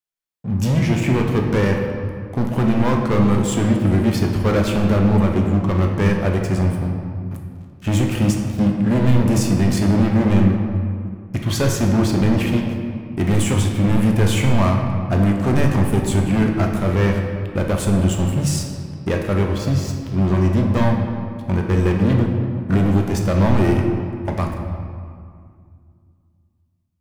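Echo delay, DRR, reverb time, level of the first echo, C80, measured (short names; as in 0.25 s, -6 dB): none, 1.0 dB, 2.1 s, none, 5.0 dB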